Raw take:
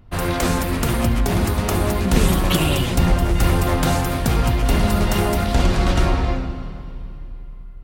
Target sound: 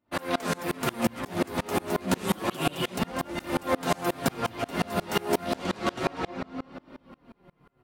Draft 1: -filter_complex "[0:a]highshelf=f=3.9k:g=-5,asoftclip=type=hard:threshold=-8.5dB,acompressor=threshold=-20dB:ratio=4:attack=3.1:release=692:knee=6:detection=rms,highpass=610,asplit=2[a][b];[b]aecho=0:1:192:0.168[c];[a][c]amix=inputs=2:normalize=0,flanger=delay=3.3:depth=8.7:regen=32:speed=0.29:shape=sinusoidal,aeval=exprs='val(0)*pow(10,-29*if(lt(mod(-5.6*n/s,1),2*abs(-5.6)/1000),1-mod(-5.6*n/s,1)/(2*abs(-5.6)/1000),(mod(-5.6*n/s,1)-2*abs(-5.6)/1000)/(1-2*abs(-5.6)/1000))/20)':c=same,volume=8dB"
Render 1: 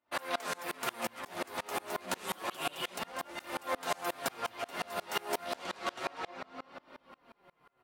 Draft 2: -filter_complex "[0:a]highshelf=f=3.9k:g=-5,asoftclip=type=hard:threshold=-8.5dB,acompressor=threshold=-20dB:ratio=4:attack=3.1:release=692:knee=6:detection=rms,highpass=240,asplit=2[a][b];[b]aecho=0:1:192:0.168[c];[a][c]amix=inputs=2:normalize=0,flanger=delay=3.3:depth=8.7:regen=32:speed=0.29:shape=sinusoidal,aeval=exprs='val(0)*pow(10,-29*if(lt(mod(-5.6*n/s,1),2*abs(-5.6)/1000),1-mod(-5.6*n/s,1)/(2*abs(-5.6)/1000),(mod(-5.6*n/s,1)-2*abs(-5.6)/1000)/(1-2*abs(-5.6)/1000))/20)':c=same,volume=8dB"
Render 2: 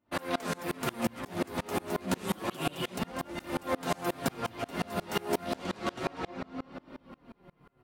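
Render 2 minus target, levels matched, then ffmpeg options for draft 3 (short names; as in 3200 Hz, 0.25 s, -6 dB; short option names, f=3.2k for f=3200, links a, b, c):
compressor: peak gain reduction +5.5 dB
-filter_complex "[0:a]highshelf=f=3.9k:g=-5,asoftclip=type=hard:threshold=-8.5dB,acompressor=threshold=-12dB:ratio=4:attack=3.1:release=692:knee=6:detection=rms,highpass=240,asplit=2[a][b];[b]aecho=0:1:192:0.168[c];[a][c]amix=inputs=2:normalize=0,flanger=delay=3.3:depth=8.7:regen=32:speed=0.29:shape=sinusoidal,aeval=exprs='val(0)*pow(10,-29*if(lt(mod(-5.6*n/s,1),2*abs(-5.6)/1000),1-mod(-5.6*n/s,1)/(2*abs(-5.6)/1000),(mod(-5.6*n/s,1)-2*abs(-5.6)/1000)/(1-2*abs(-5.6)/1000))/20)':c=same,volume=8dB"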